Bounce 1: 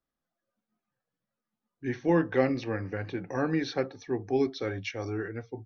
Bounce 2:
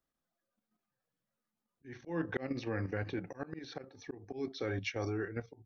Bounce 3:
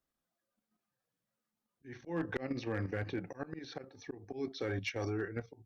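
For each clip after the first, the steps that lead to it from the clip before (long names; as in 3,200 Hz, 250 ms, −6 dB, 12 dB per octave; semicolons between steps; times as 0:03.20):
output level in coarse steps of 9 dB; volume swells 282 ms; level +1 dB
asymmetric clip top −28 dBFS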